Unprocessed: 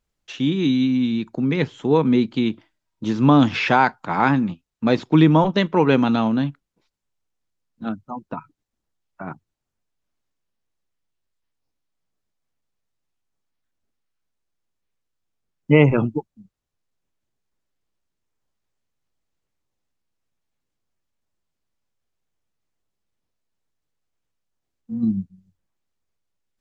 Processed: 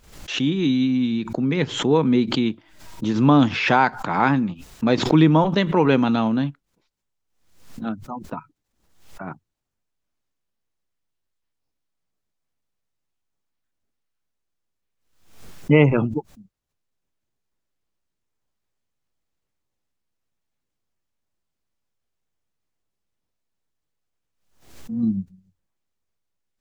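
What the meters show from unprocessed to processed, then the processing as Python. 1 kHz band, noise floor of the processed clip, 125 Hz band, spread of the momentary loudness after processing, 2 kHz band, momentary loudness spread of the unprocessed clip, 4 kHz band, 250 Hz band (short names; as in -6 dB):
-0.5 dB, -79 dBFS, -0.5 dB, 18 LU, -0.5 dB, 18 LU, +2.0 dB, -0.5 dB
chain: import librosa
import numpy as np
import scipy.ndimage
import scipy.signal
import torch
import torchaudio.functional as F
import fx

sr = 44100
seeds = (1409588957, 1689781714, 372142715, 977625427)

y = fx.pre_swell(x, sr, db_per_s=83.0)
y = y * librosa.db_to_amplitude(-1.0)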